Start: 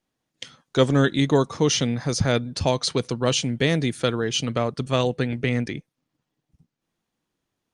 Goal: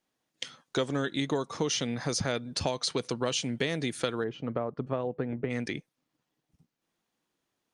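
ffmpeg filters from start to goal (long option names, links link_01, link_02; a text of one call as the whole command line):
ffmpeg -i in.wav -filter_complex "[0:a]lowshelf=frequency=160:gain=-11.5,acompressor=threshold=-26dB:ratio=6,asplit=3[link_01][link_02][link_03];[link_01]afade=type=out:start_time=4.23:duration=0.02[link_04];[link_02]lowpass=1100,afade=type=in:start_time=4.23:duration=0.02,afade=type=out:start_time=5.49:duration=0.02[link_05];[link_03]afade=type=in:start_time=5.49:duration=0.02[link_06];[link_04][link_05][link_06]amix=inputs=3:normalize=0" out.wav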